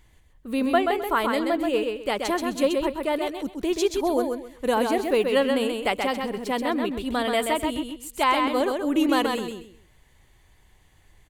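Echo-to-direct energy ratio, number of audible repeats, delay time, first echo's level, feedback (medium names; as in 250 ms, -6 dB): -4.0 dB, 3, 130 ms, -4.5 dB, 24%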